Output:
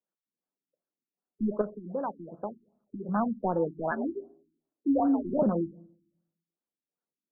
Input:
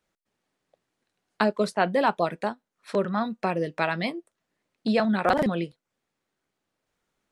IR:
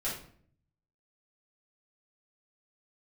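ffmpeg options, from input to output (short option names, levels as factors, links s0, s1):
-filter_complex "[0:a]highpass=f=160:w=0.5412,highpass=f=160:w=1.3066,afwtdn=0.0282,asettb=1/sr,asplit=3[s0][s1][s2];[s0]atrim=end=1.614[s3];[s1]atrim=start=1.61:end=3.09,asetpts=PTS-STARTPTS,afade=t=in:d=0.004:c=qsin,afade=t=out:st=1.476:d=0.004:c=qsin,acompressor=threshold=0.02:ratio=2.5[s4];[s2]atrim=start=3.086[s5];[s3][s4]acrossfade=d=0.004:c1=hsin:c2=qsin[s6];[s6][s5]acrossfade=d=0.004:c1=qsin:c2=hsin,asoftclip=type=tanh:threshold=0.158,asettb=1/sr,asplit=3[s7][s8][s9];[s7]atrim=end=3.914[s10];[s8]atrim=start=3.91:end=5.24,asetpts=PTS-STARTPTS,afade=t=in:d=0.004:c=qsin,afade=t=out:st=1.326:d=0.004:c=qsin,afreqshift=61[s11];[s9]atrim=start=5.236[s12];[s10][s11]acrossfade=d=0.004:c1=hsin:c2=qsin[s13];[s13][s12]acrossfade=d=0.004:c1=qsin:c2=hsin,asplit=2[s14][s15];[1:a]atrim=start_sample=2205,lowpass=1200[s16];[s15][s16]afir=irnorm=-1:irlink=0,volume=0.126[s17];[s14][s17]amix=inputs=2:normalize=0,afftfilt=real='re*lt(b*sr/1024,350*pow(1800/350,0.5+0.5*sin(2*PI*2.6*pts/sr)))':imag='im*lt(b*sr/1024,350*pow(1800/350,0.5+0.5*sin(2*PI*2.6*pts/sr)))':win_size=1024:overlap=0.75"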